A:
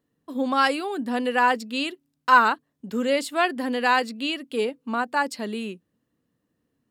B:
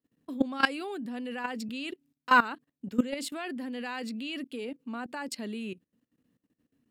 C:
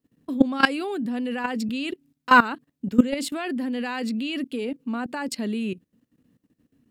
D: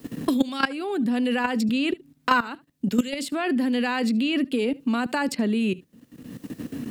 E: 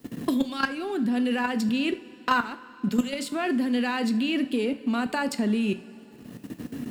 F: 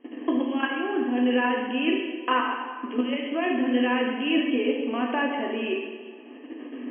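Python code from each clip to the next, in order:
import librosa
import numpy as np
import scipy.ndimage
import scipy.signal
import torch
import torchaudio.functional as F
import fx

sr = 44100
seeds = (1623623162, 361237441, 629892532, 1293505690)

y1 = fx.graphic_eq_15(x, sr, hz=(250, 1000, 2500), db=(6, -3, 4))
y1 = fx.level_steps(y1, sr, step_db=18)
y2 = fx.low_shelf(y1, sr, hz=300.0, db=6.5)
y2 = F.gain(torch.from_numpy(y2), 5.5).numpy()
y3 = y2 + 10.0 ** (-24.0 / 20.0) * np.pad(y2, (int(73 * sr / 1000.0), 0))[:len(y2)]
y3 = fx.band_squash(y3, sr, depth_pct=100)
y3 = F.gain(torch.from_numpy(y3), 1.5).numpy()
y4 = fx.leveller(y3, sr, passes=1)
y4 = fx.rev_double_slope(y4, sr, seeds[0], early_s=0.35, late_s=3.6, knee_db=-18, drr_db=9.5)
y4 = F.gain(torch.from_numpy(y4), -6.0).numpy()
y5 = fx.brickwall_bandpass(y4, sr, low_hz=240.0, high_hz=3300.0)
y5 = fx.notch(y5, sr, hz=1400.0, q=5.1)
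y5 = fx.rev_plate(y5, sr, seeds[1], rt60_s=1.5, hf_ratio=0.9, predelay_ms=0, drr_db=-0.5)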